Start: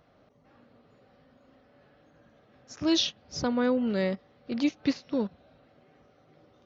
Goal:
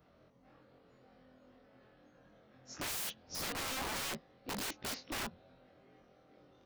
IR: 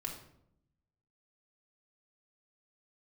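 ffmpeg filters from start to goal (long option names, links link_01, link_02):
-af "afftfilt=real='re':imag='-im':win_size=2048:overlap=0.75,aeval=exprs='(mod(56.2*val(0)+1,2)-1)/56.2':channel_layout=same,volume=1dB"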